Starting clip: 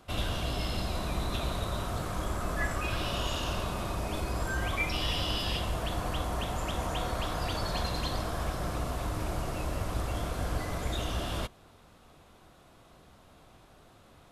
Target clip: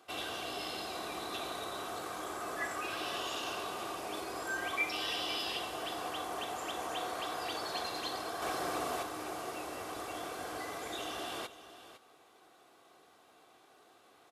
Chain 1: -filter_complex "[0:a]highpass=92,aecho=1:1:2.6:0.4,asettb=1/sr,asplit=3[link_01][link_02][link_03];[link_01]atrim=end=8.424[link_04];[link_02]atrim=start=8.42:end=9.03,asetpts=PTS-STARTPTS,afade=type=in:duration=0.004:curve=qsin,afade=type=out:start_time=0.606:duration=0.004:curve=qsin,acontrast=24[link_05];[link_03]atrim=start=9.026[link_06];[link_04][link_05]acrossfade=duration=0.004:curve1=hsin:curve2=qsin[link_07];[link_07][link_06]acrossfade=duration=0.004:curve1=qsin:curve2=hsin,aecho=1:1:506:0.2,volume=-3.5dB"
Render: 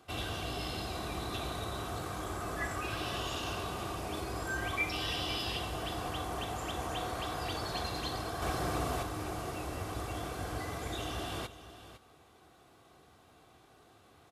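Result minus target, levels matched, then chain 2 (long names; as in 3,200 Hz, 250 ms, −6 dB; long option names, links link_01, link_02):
125 Hz band +16.0 dB
-filter_complex "[0:a]highpass=330,aecho=1:1:2.6:0.4,asettb=1/sr,asplit=3[link_01][link_02][link_03];[link_01]atrim=end=8.424[link_04];[link_02]atrim=start=8.42:end=9.03,asetpts=PTS-STARTPTS,afade=type=in:duration=0.004:curve=qsin,afade=type=out:start_time=0.606:duration=0.004:curve=qsin,acontrast=24[link_05];[link_03]atrim=start=9.026[link_06];[link_04][link_05]acrossfade=duration=0.004:curve1=hsin:curve2=qsin[link_07];[link_07][link_06]acrossfade=duration=0.004:curve1=qsin:curve2=hsin,aecho=1:1:506:0.2,volume=-3.5dB"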